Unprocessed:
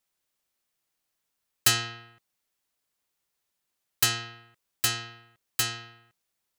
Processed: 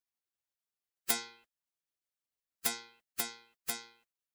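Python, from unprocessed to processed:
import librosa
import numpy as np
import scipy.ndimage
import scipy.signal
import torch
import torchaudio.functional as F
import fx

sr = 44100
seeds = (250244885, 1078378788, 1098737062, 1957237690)

y = fx.stretch_vocoder(x, sr, factor=0.66)
y = fx.spec_gate(y, sr, threshold_db=-10, keep='weak')
y = F.gain(torch.from_numpy(y), -1.5).numpy()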